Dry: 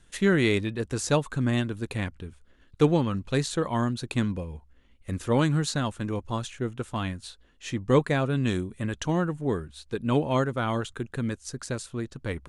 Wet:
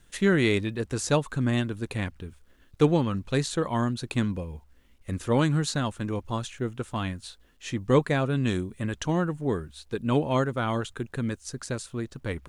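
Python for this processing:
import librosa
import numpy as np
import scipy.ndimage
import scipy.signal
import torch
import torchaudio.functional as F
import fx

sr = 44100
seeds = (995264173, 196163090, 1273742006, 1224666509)

y = fx.quant_dither(x, sr, seeds[0], bits=12, dither='none')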